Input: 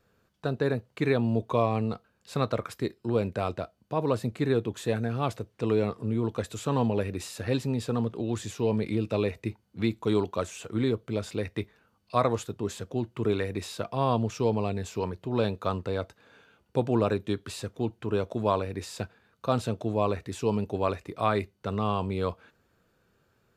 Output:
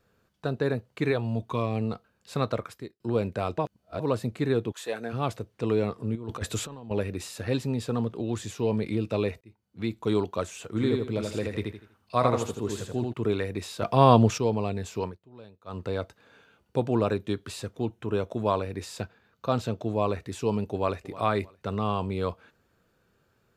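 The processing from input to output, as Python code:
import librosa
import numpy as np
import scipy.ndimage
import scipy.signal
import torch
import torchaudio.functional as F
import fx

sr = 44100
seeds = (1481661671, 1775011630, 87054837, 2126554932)

y = fx.peak_eq(x, sr, hz=fx.line((1.1, 180.0), (1.8, 1200.0)), db=-11.0, octaves=0.75, at=(1.1, 1.8), fade=0.02)
y = fx.highpass(y, sr, hz=fx.line((4.71, 890.0), (5.12, 250.0)), slope=12, at=(4.71, 5.12), fade=0.02)
y = fx.over_compress(y, sr, threshold_db=-33.0, ratio=-0.5, at=(6.15, 6.91))
y = fx.echo_feedback(y, sr, ms=81, feedback_pct=31, wet_db=-3.5, at=(10.76, 13.12), fade=0.02)
y = fx.notch(y, sr, hz=4600.0, q=6.3, at=(17.87, 18.46))
y = fx.peak_eq(y, sr, hz=9500.0, db=-10.5, octaves=0.31, at=(19.01, 19.85))
y = fx.echo_throw(y, sr, start_s=20.73, length_s=0.46, ms=310, feedback_pct=30, wet_db=-17.5)
y = fx.edit(y, sr, fx.fade_out_span(start_s=2.53, length_s=0.47),
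    fx.reverse_span(start_s=3.58, length_s=0.42),
    fx.fade_in_span(start_s=9.41, length_s=0.66),
    fx.clip_gain(start_s=13.82, length_s=0.56, db=8.5),
    fx.fade_down_up(start_s=15.03, length_s=0.79, db=-21.5, fade_s=0.16), tone=tone)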